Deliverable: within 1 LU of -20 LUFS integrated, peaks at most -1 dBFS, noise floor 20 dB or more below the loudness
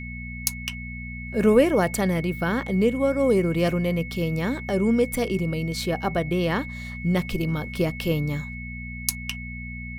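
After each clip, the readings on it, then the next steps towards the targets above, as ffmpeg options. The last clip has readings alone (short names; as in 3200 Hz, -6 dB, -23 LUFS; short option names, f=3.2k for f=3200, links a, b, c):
hum 60 Hz; harmonics up to 240 Hz; hum level -33 dBFS; steady tone 2200 Hz; tone level -37 dBFS; loudness -25.0 LUFS; peak -2.5 dBFS; loudness target -20.0 LUFS
-> -af "bandreject=f=60:t=h:w=4,bandreject=f=120:t=h:w=4,bandreject=f=180:t=h:w=4,bandreject=f=240:t=h:w=4"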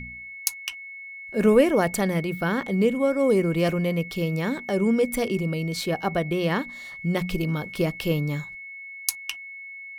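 hum none; steady tone 2200 Hz; tone level -37 dBFS
-> -af "bandreject=f=2.2k:w=30"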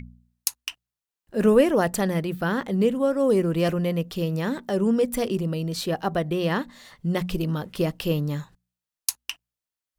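steady tone none; loudness -25.0 LUFS; peak -2.5 dBFS; loudness target -20.0 LUFS
-> -af "volume=5dB,alimiter=limit=-1dB:level=0:latency=1"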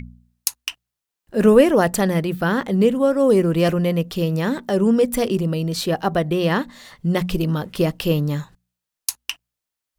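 loudness -20.0 LUFS; peak -1.0 dBFS; noise floor -85 dBFS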